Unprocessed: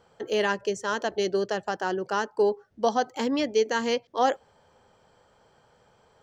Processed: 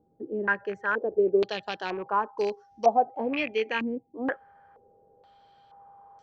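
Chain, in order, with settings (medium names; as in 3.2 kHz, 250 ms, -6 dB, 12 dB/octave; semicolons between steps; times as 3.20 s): rattle on loud lows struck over -36 dBFS, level -25 dBFS; whistle 800 Hz -51 dBFS; step-sequenced low-pass 2.1 Hz 300–5800 Hz; trim -5.5 dB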